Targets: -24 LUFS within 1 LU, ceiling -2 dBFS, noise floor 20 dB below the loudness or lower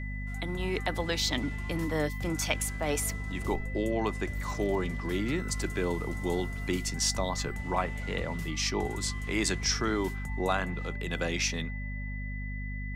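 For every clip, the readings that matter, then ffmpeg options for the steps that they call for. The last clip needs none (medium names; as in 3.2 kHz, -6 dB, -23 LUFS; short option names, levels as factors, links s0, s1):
hum 50 Hz; highest harmonic 250 Hz; hum level -34 dBFS; steady tone 2 kHz; tone level -42 dBFS; loudness -31.5 LUFS; peak level -13.5 dBFS; loudness target -24.0 LUFS
-> -af "bandreject=f=50:t=h:w=6,bandreject=f=100:t=h:w=6,bandreject=f=150:t=h:w=6,bandreject=f=200:t=h:w=6,bandreject=f=250:t=h:w=6"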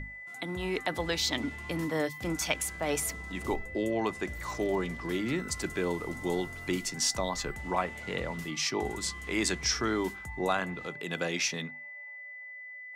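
hum not found; steady tone 2 kHz; tone level -42 dBFS
-> -af "bandreject=f=2000:w=30"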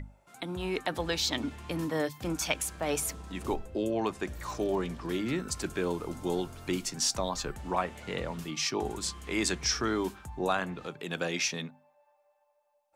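steady tone not found; loudness -32.5 LUFS; peak level -13.5 dBFS; loudness target -24.0 LUFS
-> -af "volume=2.66"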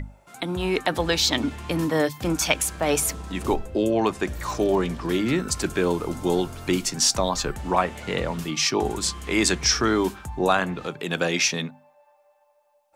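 loudness -24.0 LUFS; peak level -5.0 dBFS; noise floor -62 dBFS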